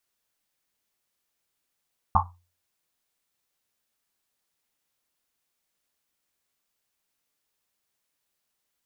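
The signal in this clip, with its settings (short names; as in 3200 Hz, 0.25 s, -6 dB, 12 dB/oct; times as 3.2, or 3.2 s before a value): Risset drum, pitch 88 Hz, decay 0.37 s, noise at 980 Hz, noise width 390 Hz, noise 70%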